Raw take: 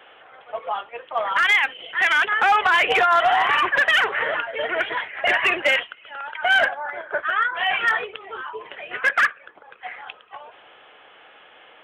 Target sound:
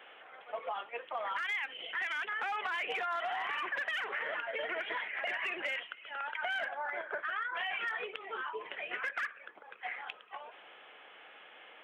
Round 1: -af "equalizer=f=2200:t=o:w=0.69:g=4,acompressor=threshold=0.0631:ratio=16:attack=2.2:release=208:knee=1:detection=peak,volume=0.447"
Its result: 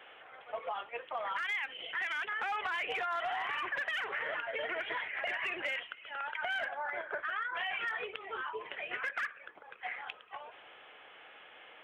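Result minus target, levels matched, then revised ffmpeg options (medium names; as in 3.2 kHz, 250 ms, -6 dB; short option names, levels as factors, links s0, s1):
125 Hz band +6.0 dB
-af "highpass=f=160:w=0.5412,highpass=f=160:w=1.3066,equalizer=f=2200:t=o:w=0.69:g=4,acompressor=threshold=0.0631:ratio=16:attack=2.2:release=208:knee=1:detection=peak,volume=0.447"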